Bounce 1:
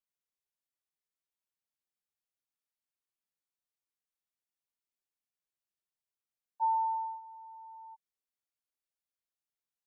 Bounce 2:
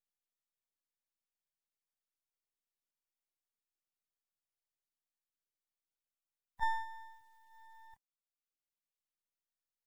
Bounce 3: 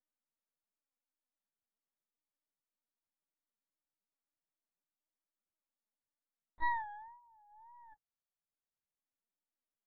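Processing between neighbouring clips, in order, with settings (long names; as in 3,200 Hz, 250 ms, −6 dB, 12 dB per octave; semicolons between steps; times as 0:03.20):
ceiling on every frequency bin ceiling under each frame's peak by 20 dB; half-wave rectification; reverb reduction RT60 1.1 s; level +2 dB
adaptive Wiener filter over 15 samples; tape wow and flutter 130 cents; linear-prediction vocoder at 8 kHz pitch kept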